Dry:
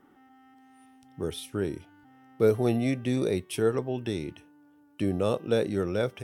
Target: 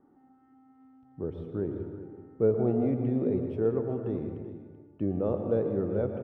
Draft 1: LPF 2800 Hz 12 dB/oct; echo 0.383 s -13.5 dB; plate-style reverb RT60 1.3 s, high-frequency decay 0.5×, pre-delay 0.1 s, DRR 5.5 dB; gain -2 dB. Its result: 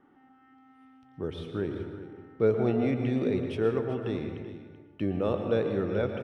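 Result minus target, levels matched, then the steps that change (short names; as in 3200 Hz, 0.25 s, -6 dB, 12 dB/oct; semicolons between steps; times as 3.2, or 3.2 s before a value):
2000 Hz band +12.5 dB
change: LPF 800 Hz 12 dB/oct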